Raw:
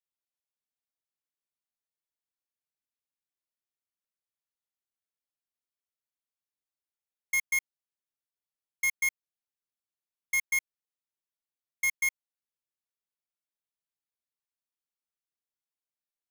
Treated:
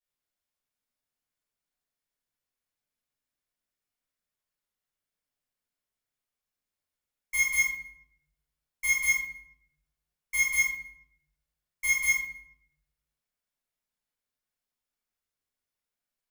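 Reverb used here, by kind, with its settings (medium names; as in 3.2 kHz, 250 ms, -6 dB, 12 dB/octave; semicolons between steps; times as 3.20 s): simulated room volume 170 m³, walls mixed, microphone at 5.8 m; trim -10 dB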